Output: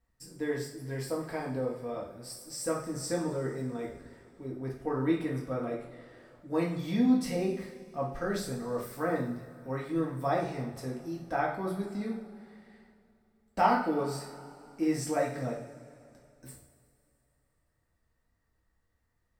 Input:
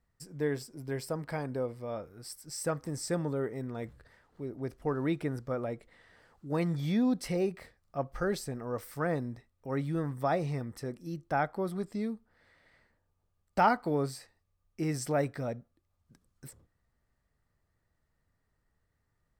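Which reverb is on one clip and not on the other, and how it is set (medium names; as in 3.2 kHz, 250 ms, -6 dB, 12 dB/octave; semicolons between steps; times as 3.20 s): two-slope reverb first 0.5 s, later 2.8 s, from -18 dB, DRR -3.5 dB; trim -4 dB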